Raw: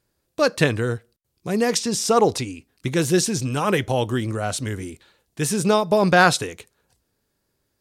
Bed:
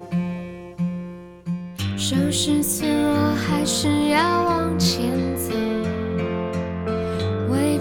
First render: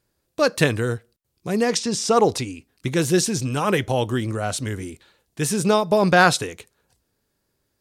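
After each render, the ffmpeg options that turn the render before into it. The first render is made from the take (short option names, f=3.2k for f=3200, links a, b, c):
-filter_complex "[0:a]asettb=1/sr,asplit=3[a][b][c];[a]atrim=end=0.554[d];[b]atrim=start=0.55:end=0.95,asetpts=PTS-STARTPTS,afade=t=in:d=0.004:c=qsin,afade=t=out:st=0.396:d=0.004:c=qsin,highshelf=f=9.6k:g=8.5[e];[c]atrim=start=0.946[f];[d][e]acrossfade=d=0.004:c1=hsin:c2=qsin[g];[g][f]acrossfade=d=0.004:c1=qsin:c2=hsin,asettb=1/sr,asplit=3[h][i][j];[h]atrim=end=1.634[k];[i]atrim=start=1.63:end=2.13,asetpts=PTS-STARTPTS,afade=t=in:d=0.004:c=qsin,afade=t=out:st=0.496:d=0.004:c=qsin,lowpass=8.3k[l];[j]atrim=start=2.126[m];[k][l]acrossfade=d=0.004:c1=hsin:c2=qsin[n];[n][m]acrossfade=d=0.004:c1=qsin:c2=hsin"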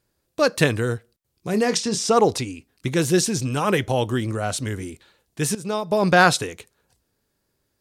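-filter_complex "[0:a]asettb=1/sr,asplit=3[a][b][c];[a]atrim=end=1.504[d];[b]atrim=start=1.5:end=2.1,asetpts=PTS-STARTPTS,afade=t=in:d=0.004:c=qsin,afade=t=out:st=0.596:d=0.004:c=qsin,asplit=2[e][f];[f]adelay=28,volume=-11dB[g];[e][g]amix=inputs=2:normalize=0,atrim=end_sample=26460[h];[c]atrim=start=2.096[i];[d][h]acrossfade=d=0.004:c1=hsin:c2=qsin[j];[j][i]acrossfade=d=0.004:c1=qsin:c2=hsin,asplit=2[k][l];[k]atrim=end=5.55,asetpts=PTS-STARTPTS,afade=t=out:st=5.546:d=0.004:c=hsin:silence=0.158489[m];[l]atrim=start=5.55,asetpts=PTS-STARTPTS,afade=t=in:d=0.59:silence=0.158489[n];[m][n]concat=n=2:v=0:a=1"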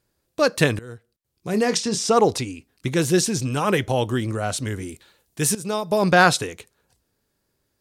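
-filter_complex "[0:a]asettb=1/sr,asplit=3[a][b][c];[a]atrim=end=4.894[d];[b]atrim=start=4.89:end=6.04,asetpts=PTS-STARTPTS,afade=t=in:d=0.004:c=qsin,afade=t=out:st=1.146:d=0.004:c=qsin,highshelf=f=6.9k:g=8[e];[c]atrim=start=6.036[f];[d][e]acrossfade=d=0.004:c1=hsin:c2=qsin[g];[g][f]acrossfade=d=0.004:c1=qsin:c2=hsin,asplit=2[h][i];[h]atrim=end=0.79,asetpts=PTS-STARTPTS,afade=t=out:st=0.786:d=0.004:c=hsin:silence=0.0891251[j];[i]atrim=start=0.79,asetpts=PTS-STARTPTS,afade=t=in:d=0.8:silence=0.0891251[k];[j][k]concat=n=2:v=0:a=1"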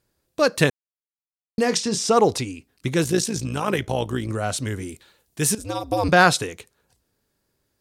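-filter_complex "[0:a]asettb=1/sr,asplit=3[a][b][c];[a]atrim=end=3.044[d];[b]atrim=start=3.04:end=4.3,asetpts=PTS-STARTPTS,afade=t=in:d=0.004:c=qsin,afade=t=out:st=1.256:d=0.004:c=qsin,tremolo=f=56:d=0.621[e];[c]atrim=start=4.296[f];[d][e]acrossfade=d=0.004:c1=hsin:c2=qsin[g];[g][f]acrossfade=d=0.004:c1=qsin:c2=hsin,asettb=1/sr,asplit=3[h][i][j];[h]atrim=end=5.584[k];[i]atrim=start=5.58:end=6.09,asetpts=PTS-STARTPTS,afade=t=in:d=0.004:c=qsin,afade=t=out:st=0.506:d=0.004:c=qsin,aeval=exprs='val(0)*sin(2*PI*98*n/s)':c=same[l];[j]atrim=start=6.086[m];[k][l]acrossfade=d=0.004:c1=hsin:c2=qsin[n];[n][m]acrossfade=d=0.004:c1=qsin:c2=hsin,asplit=3[o][p][q];[o]atrim=end=0.7,asetpts=PTS-STARTPTS,afade=t=out:st=0.696:d=0.004:c=hsin[r];[p]atrim=start=0.7:end=1.58,asetpts=PTS-STARTPTS,volume=0[s];[q]atrim=start=1.58,asetpts=PTS-STARTPTS,afade=t=in:d=0.004:c=hsin[t];[r][s][t]concat=n=3:v=0:a=1"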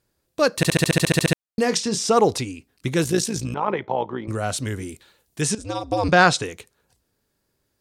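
-filter_complex "[0:a]asettb=1/sr,asplit=3[a][b][c];[a]atrim=end=3.544[d];[b]atrim=start=3.54:end=4.28,asetpts=PTS-STARTPTS,afade=t=in:d=0.004:c=qsin,afade=t=out:st=0.736:d=0.004:c=qsin,highpass=220,equalizer=f=280:t=q:w=4:g=-5,equalizer=f=900:t=q:w=4:g=8,equalizer=f=1.6k:t=q:w=4:g=-6,equalizer=f=2.8k:t=q:w=4:g=-10,lowpass=f=3k:w=0.5412,lowpass=f=3k:w=1.3066[e];[c]atrim=start=4.276[f];[d][e]acrossfade=d=0.004:c1=hsin:c2=qsin[g];[g][f]acrossfade=d=0.004:c1=qsin:c2=hsin,asettb=1/sr,asplit=3[h][i][j];[h]atrim=end=5.414[k];[i]atrim=start=5.41:end=6.45,asetpts=PTS-STARTPTS,afade=t=in:d=0.004:c=qsin,afade=t=out:st=1.036:d=0.004:c=qsin,lowpass=f=8.3k:w=0.5412,lowpass=f=8.3k:w=1.3066[l];[j]atrim=start=6.446[m];[k][l]acrossfade=d=0.004:c1=hsin:c2=qsin[n];[n][m]acrossfade=d=0.004:c1=qsin:c2=hsin,asplit=12[o][p][q][r][s][t][u][v][w][x][y][z];[o]atrim=end=0.632[aa];[p]atrim=start=0.558:end=0.632[ab];[q]atrim=start=0.558:end=0.632[ac];[r]atrim=start=0.558:end=0.632[ad];[s]atrim=start=0.558:end=0.632[ae];[t]atrim=start=0.558:end=0.632[af];[u]atrim=start=0.558:end=0.632[ag];[v]atrim=start=0.558:end=0.632[ah];[w]atrim=start=0.558:end=0.632[ai];[x]atrim=start=0.558:end=0.632[aj];[y]atrim=start=0.558:end=0.632[ak];[z]atrim=start=1.328[al];[aa][ab]acrossfade=d=0.004:c1=hsin:c2=hsin[am];[am][ac]acrossfade=d=0.004:c1=hsin:c2=hsin[an];[an][ad]acrossfade=d=0.004:c1=hsin:c2=hsin[ao];[ao][ae]acrossfade=d=0.004:c1=hsin:c2=hsin[ap];[ap][af]acrossfade=d=0.004:c1=hsin:c2=hsin[aq];[aq][ag]acrossfade=d=0.004:c1=hsin:c2=hsin[ar];[ar][ah]acrossfade=d=0.004:c1=hsin:c2=hsin[as];[as][ai]acrossfade=d=0.004:c1=hsin:c2=hsin[at];[at][aj]acrossfade=d=0.004:c1=hsin:c2=hsin[au];[au][ak]acrossfade=d=0.004:c1=hsin:c2=hsin[av];[av][al]acrossfade=d=0.004:c1=hsin:c2=hsin"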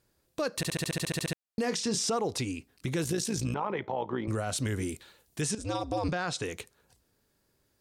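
-af "acompressor=threshold=-25dB:ratio=6,alimiter=limit=-21.5dB:level=0:latency=1:release=19"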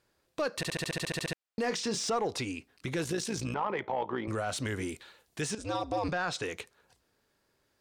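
-filter_complex "[0:a]asplit=2[a][b];[b]highpass=f=720:p=1,volume=8dB,asoftclip=type=tanh:threshold=-21dB[c];[a][c]amix=inputs=2:normalize=0,lowpass=f=3.1k:p=1,volume=-6dB"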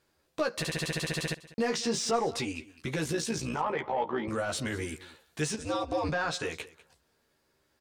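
-filter_complex "[0:a]asplit=2[a][b];[b]adelay=13,volume=-3.5dB[c];[a][c]amix=inputs=2:normalize=0,aecho=1:1:197:0.112"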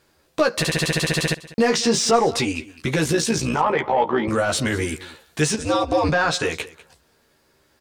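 -af "volume=11dB"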